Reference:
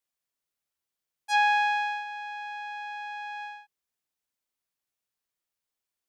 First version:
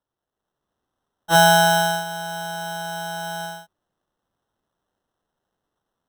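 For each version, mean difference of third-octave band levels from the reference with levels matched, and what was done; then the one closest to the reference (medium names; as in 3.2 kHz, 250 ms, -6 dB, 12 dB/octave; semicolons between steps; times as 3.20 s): 15.5 dB: dynamic bell 1.3 kHz, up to +3 dB, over -32 dBFS, Q 0.92; level rider gain up to 7.5 dB; sample-and-hold 19×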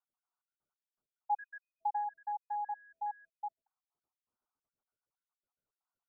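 8.5 dB: random holes in the spectrogram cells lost 64%; Chebyshev low-pass 1.5 kHz, order 8; compression 2:1, threshold -37 dBFS, peak gain reduction 6 dB; trim +4.5 dB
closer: second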